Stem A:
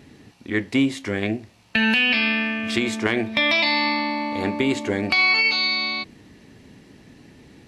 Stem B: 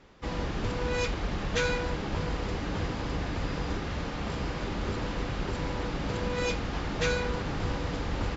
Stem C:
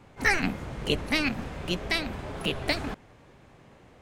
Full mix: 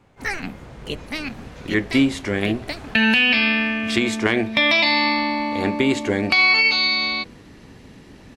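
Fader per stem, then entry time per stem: +2.5, −19.5, −3.0 decibels; 1.20, 0.00, 0.00 seconds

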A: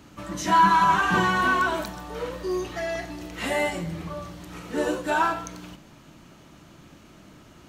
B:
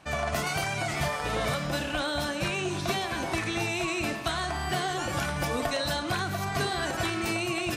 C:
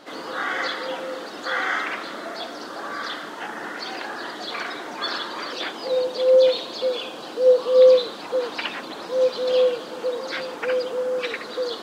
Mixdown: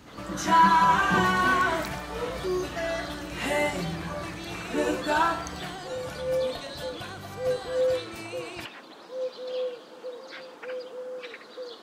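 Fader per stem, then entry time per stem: −1.0, −10.0, −12.5 decibels; 0.00, 0.90, 0.00 seconds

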